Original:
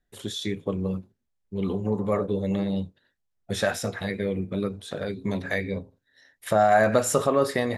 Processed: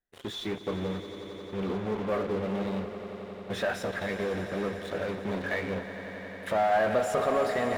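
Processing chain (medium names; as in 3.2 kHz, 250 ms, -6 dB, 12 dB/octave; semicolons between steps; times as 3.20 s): bass shelf 240 Hz -5 dB; in parallel at -9 dB: fuzz box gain 43 dB, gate -39 dBFS; on the sum: tone controls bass -4 dB, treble -15 dB; echo with a slow build-up 89 ms, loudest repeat 5, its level -15 dB; trim -9 dB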